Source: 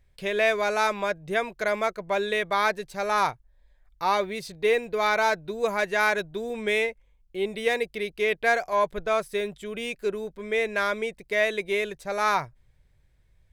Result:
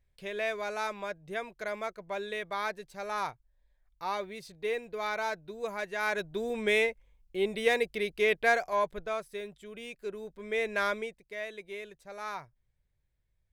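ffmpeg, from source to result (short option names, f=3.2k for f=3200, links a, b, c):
-af "volume=6dB,afade=t=in:st=6:d=0.41:silence=0.375837,afade=t=out:st=8.31:d=0.92:silence=0.334965,afade=t=in:st=10.02:d=0.86:silence=0.421697,afade=t=out:st=10.88:d=0.32:silence=0.266073"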